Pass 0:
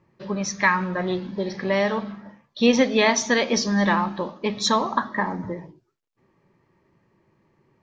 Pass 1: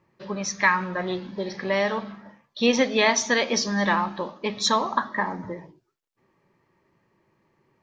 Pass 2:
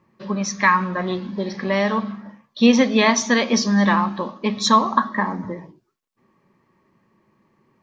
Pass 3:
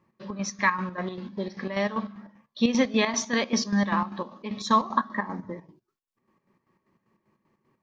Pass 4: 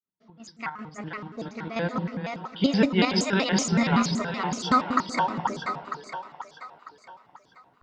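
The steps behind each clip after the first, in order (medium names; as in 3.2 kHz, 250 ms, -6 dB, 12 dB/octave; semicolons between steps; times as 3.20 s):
bass shelf 370 Hz -6 dB
small resonant body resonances 220/1100 Hz, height 9 dB; trim +2 dB
square tremolo 5.1 Hz, depth 60%, duty 55%; trim -6 dB
fade-in on the opening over 2.33 s; two-band feedback delay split 500 Hz, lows 188 ms, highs 474 ms, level -4 dB; vibrato with a chosen wave square 5.3 Hz, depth 250 cents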